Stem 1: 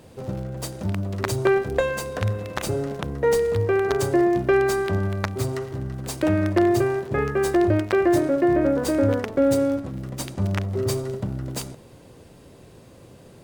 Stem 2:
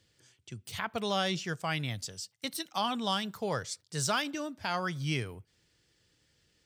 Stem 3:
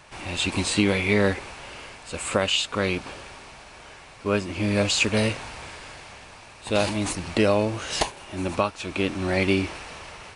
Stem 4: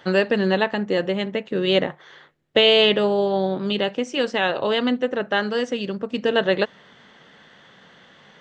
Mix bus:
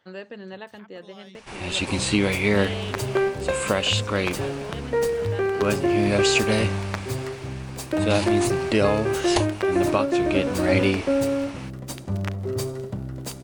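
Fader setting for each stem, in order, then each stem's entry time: −3.0, −18.5, 0.0, −18.5 decibels; 1.70, 0.00, 1.35, 0.00 seconds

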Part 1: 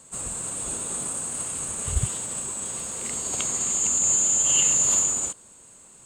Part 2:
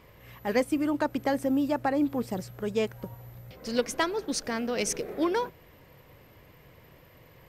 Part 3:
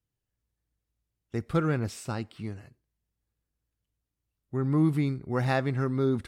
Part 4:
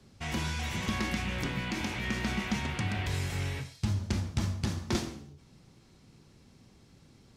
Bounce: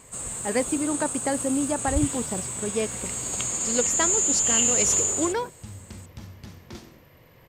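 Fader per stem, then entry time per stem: −1.5 dB, +0.5 dB, muted, −11.0 dB; 0.00 s, 0.00 s, muted, 1.80 s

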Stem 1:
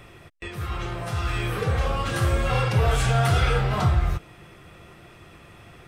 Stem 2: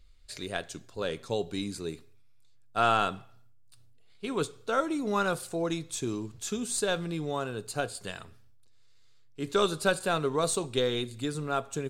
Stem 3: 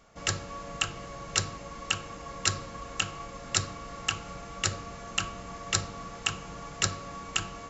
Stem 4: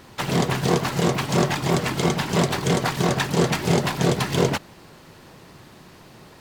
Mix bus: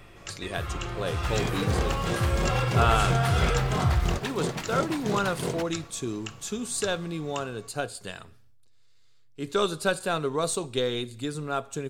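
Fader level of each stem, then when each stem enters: −3.5, +0.5, −11.0, −11.0 decibels; 0.00, 0.00, 0.00, 1.05 seconds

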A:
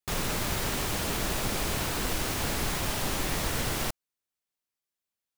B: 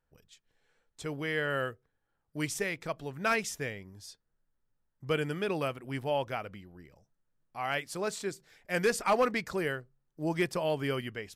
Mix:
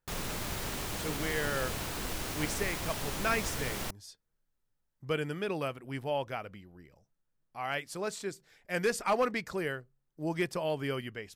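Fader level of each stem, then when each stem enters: −6.5, −2.0 decibels; 0.00, 0.00 seconds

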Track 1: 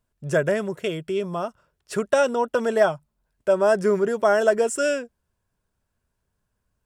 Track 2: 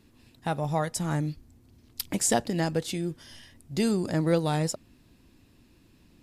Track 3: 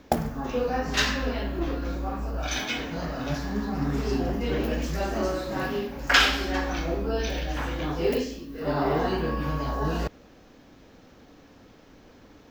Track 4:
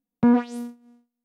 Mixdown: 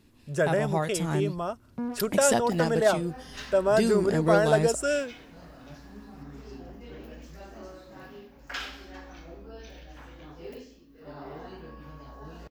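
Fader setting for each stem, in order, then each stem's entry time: −4.0, −0.5, −17.0, −15.5 decibels; 0.05, 0.00, 2.40, 1.55 seconds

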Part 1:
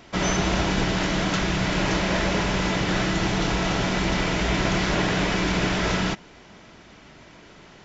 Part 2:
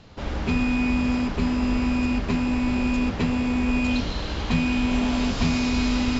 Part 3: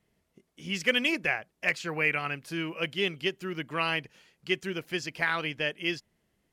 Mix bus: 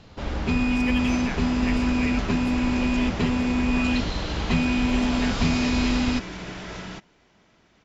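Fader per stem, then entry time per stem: −12.5, 0.0, −8.5 decibels; 0.85, 0.00, 0.00 seconds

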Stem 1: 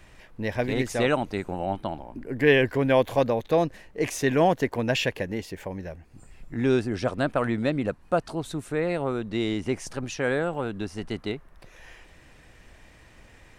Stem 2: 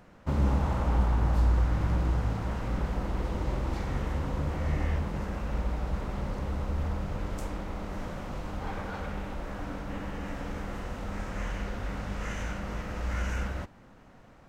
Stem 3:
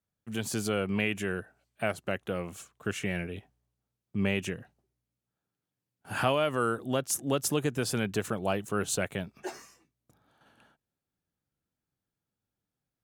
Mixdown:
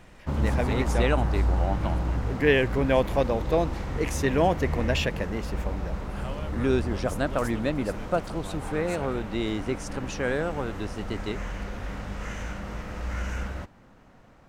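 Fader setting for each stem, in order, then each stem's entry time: −2.0, 0.0, −14.0 decibels; 0.00, 0.00, 0.00 seconds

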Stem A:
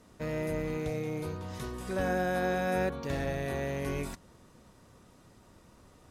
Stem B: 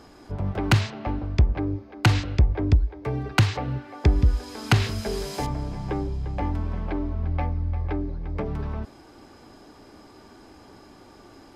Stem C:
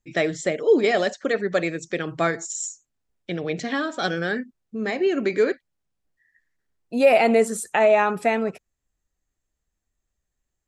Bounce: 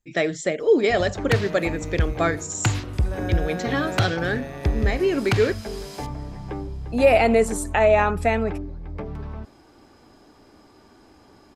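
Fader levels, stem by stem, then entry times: −2.0, −3.5, 0.0 decibels; 1.15, 0.60, 0.00 seconds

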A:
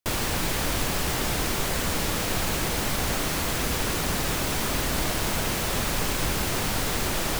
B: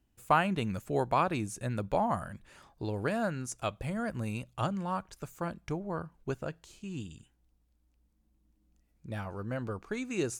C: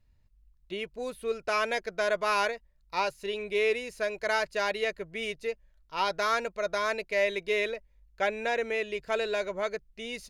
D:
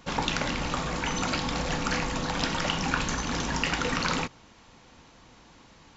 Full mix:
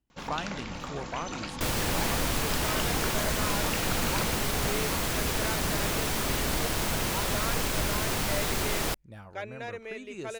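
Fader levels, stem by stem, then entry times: −2.5, −8.5, −9.5, −8.5 decibels; 1.55, 0.00, 1.15, 0.10 seconds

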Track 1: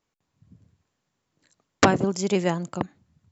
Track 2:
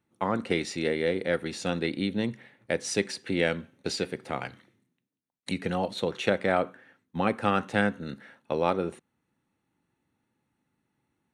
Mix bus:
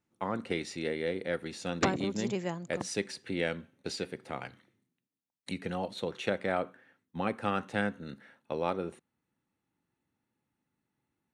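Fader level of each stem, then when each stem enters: −11.0, −6.0 decibels; 0.00, 0.00 seconds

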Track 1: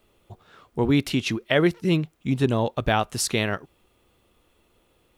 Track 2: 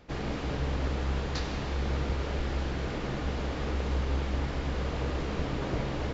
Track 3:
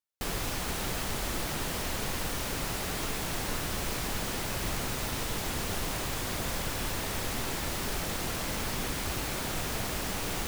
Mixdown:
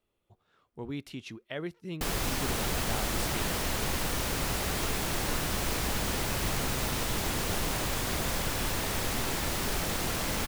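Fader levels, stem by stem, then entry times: −17.0, −11.5, +2.0 decibels; 0.00, 2.10, 1.80 seconds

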